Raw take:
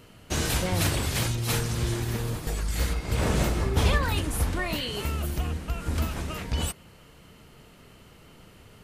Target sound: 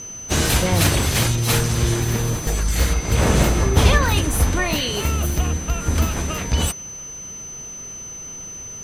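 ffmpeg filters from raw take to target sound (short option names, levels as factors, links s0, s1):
-filter_complex "[0:a]asplit=2[s0][s1];[s1]asetrate=58866,aresample=44100,atempo=0.749154,volume=0.141[s2];[s0][s2]amix=inputs=2:normalize=0,aeval=exprs='val(0)+0.01*sin(2*PI*6100*n/s)':c=same,volume=2.51"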